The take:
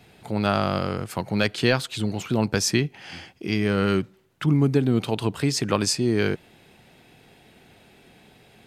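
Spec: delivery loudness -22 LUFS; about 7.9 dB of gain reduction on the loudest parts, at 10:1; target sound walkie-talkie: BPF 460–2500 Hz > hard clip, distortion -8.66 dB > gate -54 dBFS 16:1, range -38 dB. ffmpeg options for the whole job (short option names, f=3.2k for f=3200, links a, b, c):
-af "acompressor=threshold=-23dB:ratio=10,highpass=460,lowpass=2.5k,asoftclip=type=hard:threshold=-31dB,agate=range=-38dB:threshold=-54dB:ratio=16,volume=16.5dB"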